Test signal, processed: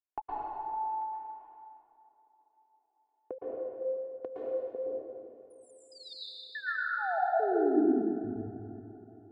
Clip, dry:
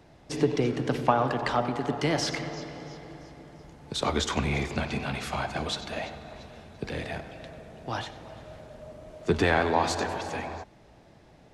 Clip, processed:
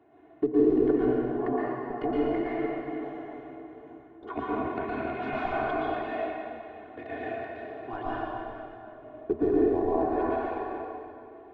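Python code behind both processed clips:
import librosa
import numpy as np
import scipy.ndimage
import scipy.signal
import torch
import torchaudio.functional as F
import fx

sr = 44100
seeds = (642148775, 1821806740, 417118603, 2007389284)

p1 = fx.wiener(x, sr, points=9)
p2 = scipy.signal.sosfilt(scipy.signal.butter(2, 210.0, 'highpass', fs=sr, output='sos'), p1)
p3 = fx.env_lowpass_down(p2, sr, base_hz=520.0, full_db=-23.0)
p4 = fx.peak_eq(p3, sr, hz=5600.0, db=-4.0, octaves=0.26)
p5 = p4 + 0.97 * np.pad(p4, (int(2.8 * sr / 1000.0), 0))[:len(p4)]
p6 = fx.schmitt(p5, sr, flips_db=-18.5)
p7 = p5 + (p6 * 10.0 ** (-9.0 / 20.0))
p8 = fx.step_gate(p7, sr, bpm=71, pattern='x.xxx.x..x.', floor_db=-60.0, edge_ms=4.5)
p9 = fx.spacing_loss(p8, sr, db_at_10k=29)
p10 = fx.echo_tape(p9, sr, ms=349, feedback_pct=75, wet_db=-21.5, lp_hz=1700.0, drive_db=11.0, wow_cents=9)
p11 = fx.rev_plate(p10, sr, seeds[0], rt60_s=2.3, hf_ratio=0.9, predelay_ms=105, drr_db=-8.0)
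y = p11 * 10.0 ** (-4.5 / 20.0)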